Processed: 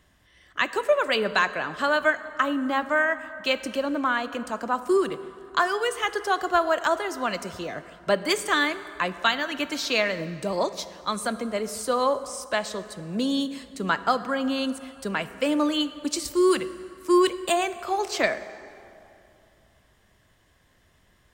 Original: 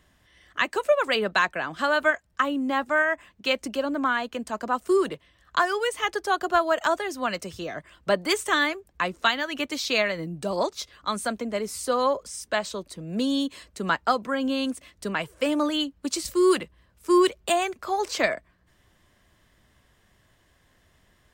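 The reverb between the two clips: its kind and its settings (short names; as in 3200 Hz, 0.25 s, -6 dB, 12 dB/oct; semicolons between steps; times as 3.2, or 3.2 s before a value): plate-style reverb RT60 2.8 s, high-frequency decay 0.6×, DRR 12.5 dB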